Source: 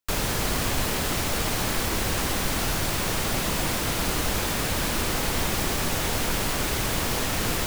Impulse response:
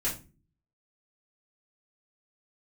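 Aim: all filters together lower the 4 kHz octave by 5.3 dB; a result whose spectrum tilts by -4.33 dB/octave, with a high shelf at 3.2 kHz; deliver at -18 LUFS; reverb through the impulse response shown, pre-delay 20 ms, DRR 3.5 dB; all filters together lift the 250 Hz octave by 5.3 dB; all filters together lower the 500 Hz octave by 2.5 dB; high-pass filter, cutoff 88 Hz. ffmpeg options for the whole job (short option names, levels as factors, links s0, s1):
-filter_complex "[0:a]highpass=88,equalizer=f=250:t=o:g=8.5,equalizer=f=500:t=o:g=-6,highshelf=f=3200:g=-4.5,equalizer=f=4000:t=o:g=-3.5,asplit=2[s0][s1];[1:a]atrim=start_sample=2205,adelay=20[s2];[s1][s2]afir=irnorm=-1:irlink=0,volume=0.335[s3];[s0][s3]amix=inputs=2:normalize=0,volume=2.11"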